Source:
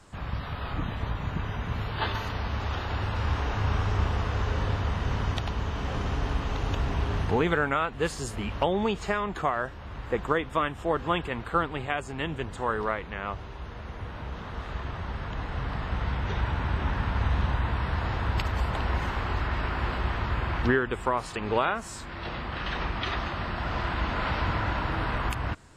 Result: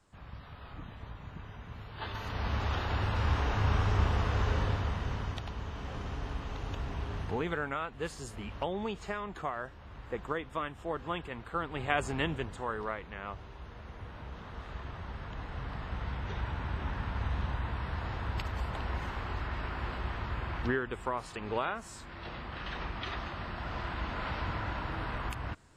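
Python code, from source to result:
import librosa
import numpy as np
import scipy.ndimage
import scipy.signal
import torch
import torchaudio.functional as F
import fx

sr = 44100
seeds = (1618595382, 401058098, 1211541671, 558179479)

y = fx.gain(x, sr, db=fx.line((1.89, -14.0), (2.48, -1.5), (4.52, -1.5), (5.4, -9.0), (11.58, -9.0), (12.04, 3.0), (12.67, -7.5)))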